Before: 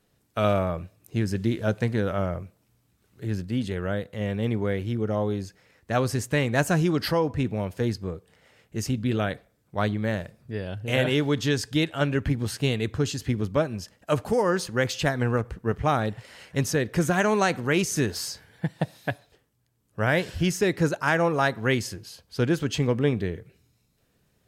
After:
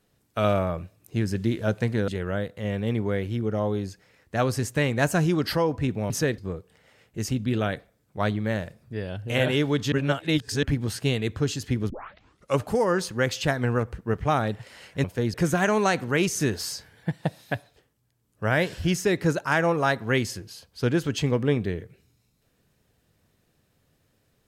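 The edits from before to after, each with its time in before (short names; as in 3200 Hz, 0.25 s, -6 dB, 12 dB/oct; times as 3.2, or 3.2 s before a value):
2.08–3.64 cut
7.66–7.96 swap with 16.62–16.9
11.5–12.21 reverse
13.48 tape start 0.70 s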